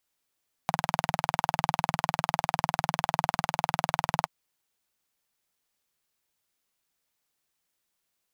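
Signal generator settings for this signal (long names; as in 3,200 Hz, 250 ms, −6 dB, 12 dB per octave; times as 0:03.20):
pulse-train model of a single-cylinder engine, steady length 3.59 s, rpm 2,400, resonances 160/800 Hz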